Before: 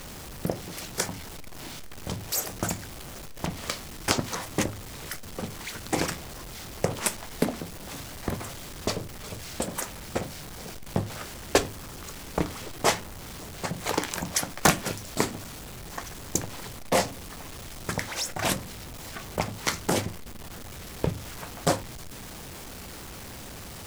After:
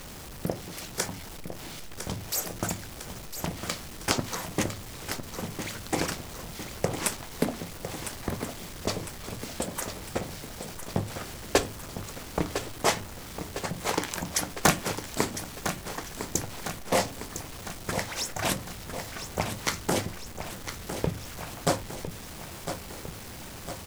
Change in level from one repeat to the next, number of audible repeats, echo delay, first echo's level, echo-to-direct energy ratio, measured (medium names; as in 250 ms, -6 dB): -4.5 dB, 5, 1005 ms, -9.5 dB, -7.5 dB